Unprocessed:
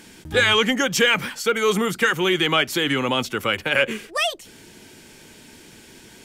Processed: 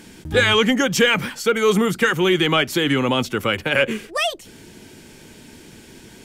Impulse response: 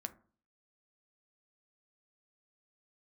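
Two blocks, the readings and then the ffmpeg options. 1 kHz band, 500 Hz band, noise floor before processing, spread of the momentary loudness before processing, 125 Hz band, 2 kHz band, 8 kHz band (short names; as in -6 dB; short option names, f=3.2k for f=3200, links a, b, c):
+1.0 dB, +3.0 dB, -47 dBFS, 7 LU, +5.5 dB, +0.5 dB, 0.0 dB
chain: -af "lowshelf=f=470:g=6"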